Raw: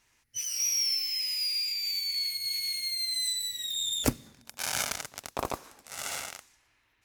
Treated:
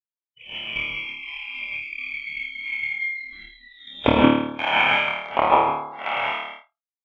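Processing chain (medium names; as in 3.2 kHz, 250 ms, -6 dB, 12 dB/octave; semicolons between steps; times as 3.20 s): tracing distortion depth 0.035 ms; rippled Chebyshev low-pass 3.3 kHz, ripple 9 dB; gated-style reverb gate 190 ms rising, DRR -8 dB; transient shaper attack +12 dB, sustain -12 dB; flutter echo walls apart 4.6 m, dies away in 0.8 s; spectral noise reduction 20 dB; expander -40 dBFS; high-pass 140 Hz 6 dB/octave; trim +4.5 dB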